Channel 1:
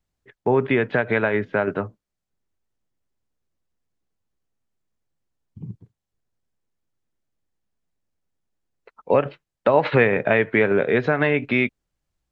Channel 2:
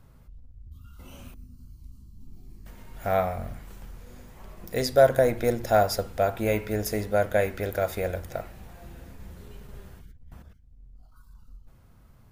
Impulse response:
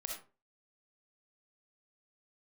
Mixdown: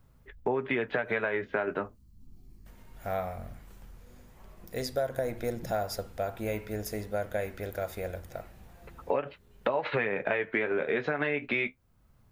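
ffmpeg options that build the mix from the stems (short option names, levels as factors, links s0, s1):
-filter_complex "[0:a]aemphasis=mode=production:type=bsi,flanger=delay=7:depth=7:regen=-42:speed=0.22:shape=sinusoidal,bass=f=250:g=1,treble=f=4000:g=-8,volume=1.33,asplit=2[s0][s1];[1:a]volume=0.447[s2];[s1]apad=whole_len=543276[s3];[s2][s3]sidechaincompress=threshold=0.0398:ratio=8:attack=8.7:release=633[s4];[s0][s4]amix=inputs=2:normalize=0,acompressor=threshold=0.0501:ratio=5"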